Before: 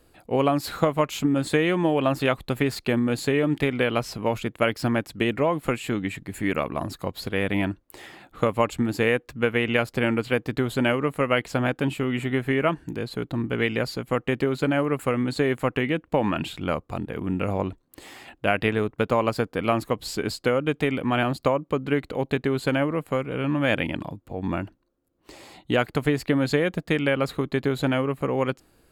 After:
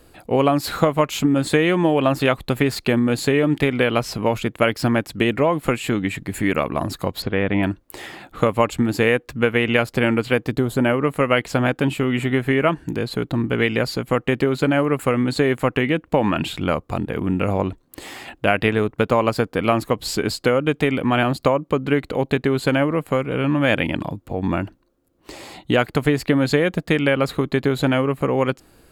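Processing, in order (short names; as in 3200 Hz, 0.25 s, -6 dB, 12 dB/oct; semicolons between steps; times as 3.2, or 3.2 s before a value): 7.22–7.63 Bessel low-pass 2300 Hz, order 2; 10.49–11.03 bell 1500 Hz -> 6600 Hz -9 dB 1.8 oct; in parallel at -1 dB: compressor, threshold -30 dBFS, peak gain reduction 14 dB; on the sum: gain +2.5 dB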